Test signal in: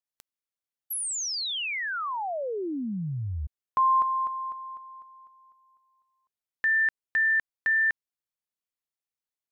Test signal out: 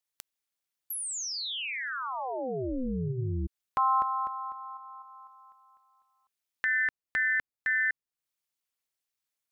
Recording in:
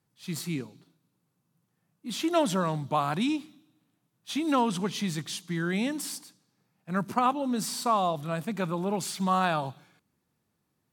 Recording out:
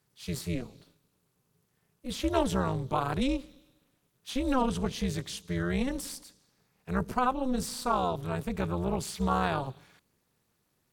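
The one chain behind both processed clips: AM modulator 260 Hz, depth 85%; low shelf 380 Hz +5 dB; mismatched tape noise reduction encoder only

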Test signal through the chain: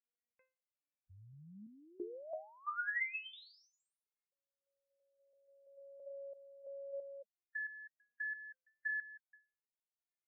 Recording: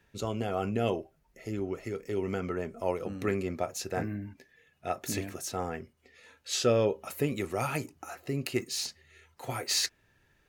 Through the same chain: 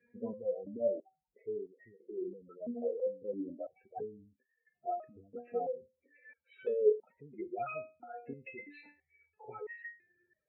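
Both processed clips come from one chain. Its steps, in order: speaker cabinet 110–2300 Hz, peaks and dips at 210 Hz +5 dB, 500 Hz +7 dB, 1100 Hz -4 dB, 2300 Hz +7 dB; spectral gate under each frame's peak -10 dB strong; stepped resonator 3 Hz 240–930 Hz; gain +10 dB

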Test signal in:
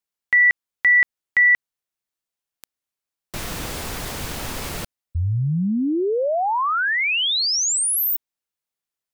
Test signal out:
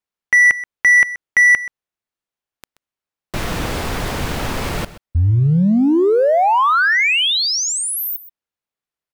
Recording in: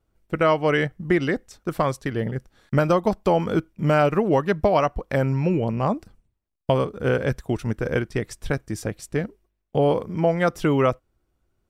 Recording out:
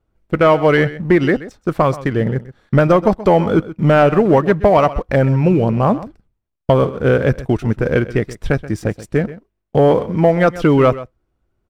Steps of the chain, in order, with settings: high shelf 4400 Hz -11.5 dB; sample leveller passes 1; on a send: echo 0.129 s -16 dB; on the sum: gain +5 dB

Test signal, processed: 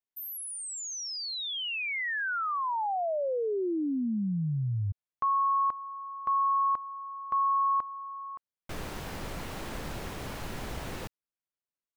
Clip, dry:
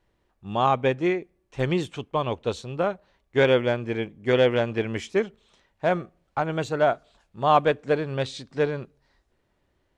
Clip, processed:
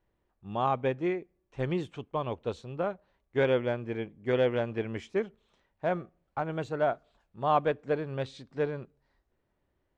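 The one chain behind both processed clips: high shelf 3300 Hz -10 dB; gain -6 dB

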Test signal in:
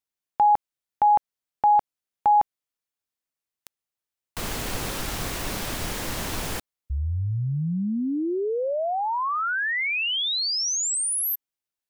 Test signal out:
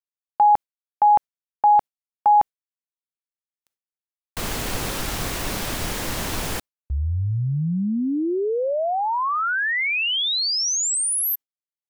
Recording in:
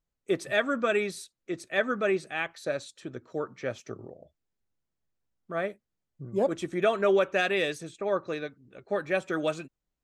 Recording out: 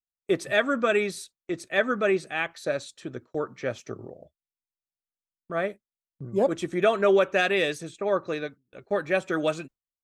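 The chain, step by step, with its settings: gate with hold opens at -43 dBFS, closes at -50 dBFS, hold 23 ms, range -26 dB; gain +3 dB

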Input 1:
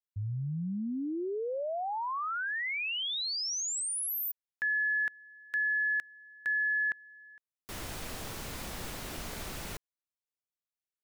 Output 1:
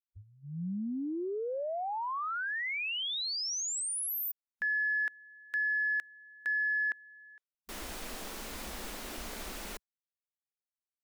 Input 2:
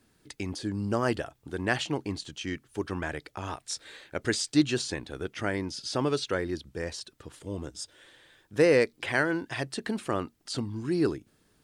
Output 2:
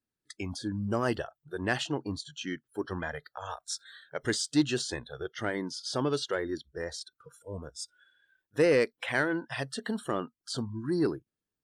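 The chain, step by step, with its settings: spectral noise reduction 25 dB; in parallel at -5.5 dB: soft clip -22 dBFS; on the sum: gain -4.5 dB

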